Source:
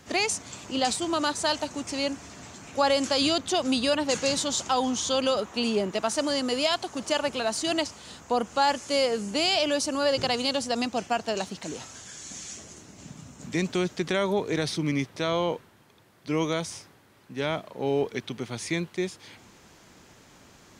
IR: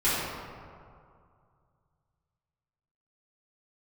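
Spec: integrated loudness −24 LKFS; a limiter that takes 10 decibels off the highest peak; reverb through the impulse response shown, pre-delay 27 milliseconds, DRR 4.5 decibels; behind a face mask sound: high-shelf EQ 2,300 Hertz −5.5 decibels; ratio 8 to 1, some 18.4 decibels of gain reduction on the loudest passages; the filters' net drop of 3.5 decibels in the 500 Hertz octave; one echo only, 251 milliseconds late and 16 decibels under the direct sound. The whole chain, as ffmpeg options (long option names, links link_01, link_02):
-filter_complex "[0:a]equalizer=frequency=500:width_type=o:gain=-4,acompressor=threshold=-40dB:ratio=8,alimiter=level_in=11.5dB:limit=-24dB:level=0:latency=1,volume=-11.5dB,aecho=1:1:251:0.158,asplit=2[link_01][link_02];[1:a]atrim=start_sample=2205,adelay=27[link_03];[link_02][link_03]afir=irnorm=-1:irlink=0,volume=-18.5dB[link_04];[link_01][link_04]amix=inputs=2:normalize=0,highshelf=frequency=2300:gain=-5.5,volume=22dB"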